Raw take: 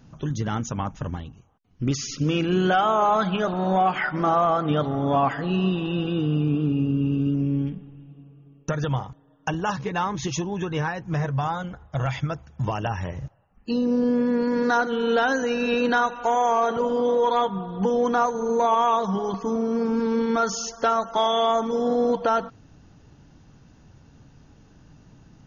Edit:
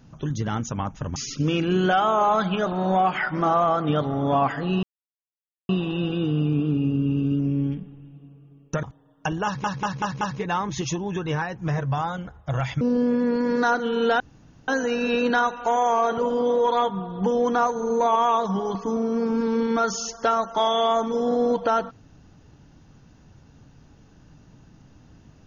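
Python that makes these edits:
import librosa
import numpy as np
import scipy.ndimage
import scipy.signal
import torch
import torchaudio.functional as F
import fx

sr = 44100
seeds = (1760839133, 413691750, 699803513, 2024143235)

y = fx.edit(x, sr, fx.cut(start_s=1.16, length_s=0.81),
    fx.insert_silence(at_s=5.64, length_s=0.86),
    fx.cut(start_s=8.78, length_s=0.27),
    fx.stutter(start_s=9.67, slice_s=0.19, count=5),
    fx.cut(start_s=12.27, length_s=1.61),
    fx.insert_room_tone(at_s=15.27, length_s=0.48), tone=tone)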